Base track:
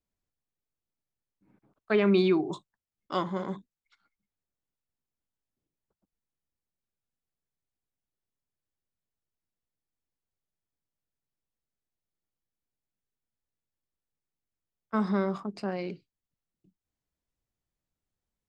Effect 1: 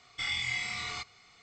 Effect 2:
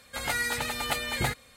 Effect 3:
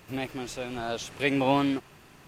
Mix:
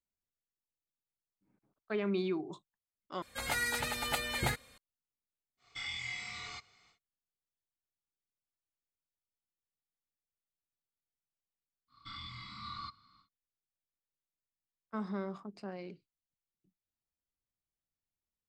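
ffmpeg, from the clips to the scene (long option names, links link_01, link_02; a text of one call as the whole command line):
ffmpeg -i bed.wav -i cue0.wav -i cue1.wav -filter_complex "[1:a]asplit=2[link_01][link_02];[0:a]volume=-10.5dB[link_03];[link_02]firequalizer=gain_entry='entry(120,0);entry(280,5);entry(410,-24);entry(710,-26);entry(1100,8);entry(1800,-16);entry(2700,-18);entry(4200,0);entry(6300,-27);entry(12000,-12)':delay=0.05:min_phase=1[link_04];[link_03]asplit=2[link_05][link_06];[link_05]atrim=end=3.224[link_07];[2:a]atrim=end=1.56,asetpts=PTS-STARTPTS,volume=-4.5dB[link_08];[link_06]atrim=start=4.776[link_09];[link_01]atrim=end=1.42,asetpts=PTS-STARTPTS,volume=-7.5dB,afade=type=in:duration=0.1,afade=type=out:start_time=1.32:duration=0.1,adelay=245637S[link_10];[link_04]atrim=end=1.42,asetpts=PTS-STARTPTS,volume=-4dB,afade=type=in:duration=0.1,afade=type=out:start_time=1.32:duration=0.1,adelay=11870[link_11];[link_07][link_08]acrossfade=duration=0.004:curve1=hsin:curve2=hsin[link_12];[link_12][link_09]acrossfade=duration=0.004:curve1=hsin:curve2=hsin[link_13];[link_13][link_10][link_11]amix=inputs=3:normalize=0" out.wav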